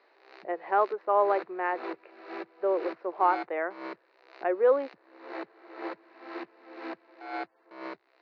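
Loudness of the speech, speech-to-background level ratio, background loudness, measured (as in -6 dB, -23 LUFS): -28.5 LUFS, 13.5 dB, -42.0 LUFS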